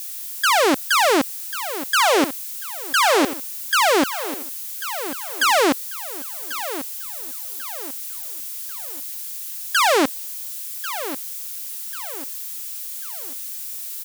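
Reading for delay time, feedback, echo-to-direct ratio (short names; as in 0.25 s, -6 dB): 1.092 s, 40%, -11.5 dB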